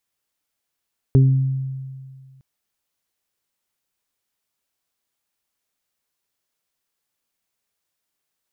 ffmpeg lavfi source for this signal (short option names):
-f lavfi -i "aevalsrc='0.376*pow(10,-3*t/1.95)*sin(2*PI*133*t)+0.119*pow(10,-3*t/0.77)*sin(2*PI*266*t)+0.112*pow(10,-3*t/0.3)*sin(2*PI*399*t)':d=1.26:s=44100"